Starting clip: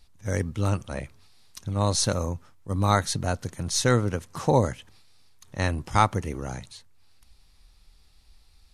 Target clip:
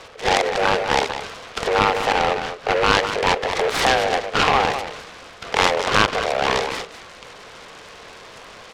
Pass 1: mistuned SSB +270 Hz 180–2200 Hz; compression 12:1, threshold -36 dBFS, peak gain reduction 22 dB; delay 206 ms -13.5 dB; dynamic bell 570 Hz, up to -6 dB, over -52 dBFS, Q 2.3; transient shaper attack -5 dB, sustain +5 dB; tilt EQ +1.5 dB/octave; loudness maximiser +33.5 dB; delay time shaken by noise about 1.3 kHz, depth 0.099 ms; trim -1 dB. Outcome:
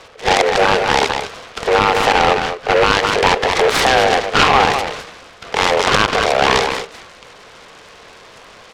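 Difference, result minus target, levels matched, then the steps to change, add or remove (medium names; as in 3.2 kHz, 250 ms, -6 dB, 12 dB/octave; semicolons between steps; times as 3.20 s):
compression: peak gain reduction -8.5 dB
change: compression 12:1, threshold -45.5 dBFS, peak gain reduction 31 dB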